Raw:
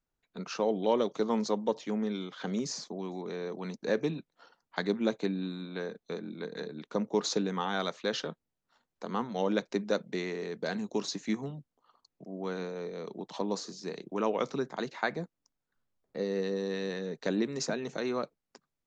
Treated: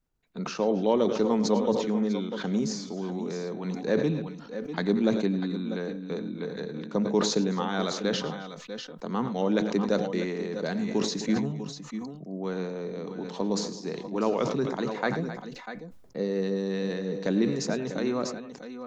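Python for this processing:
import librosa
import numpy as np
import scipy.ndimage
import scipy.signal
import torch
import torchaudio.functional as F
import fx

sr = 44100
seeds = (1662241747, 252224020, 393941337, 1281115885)

y = fx.low_shelf(x, sr, hz=350.0, db=7.5)
y = fx.echo_multitap(y, sr, ms=(89, 108, 262, 643, 647), db=(-18.0, -15.5, -19.5, -16.5, -12.0))
y = fx.sustainer(y, sr, db_per_s=60.0)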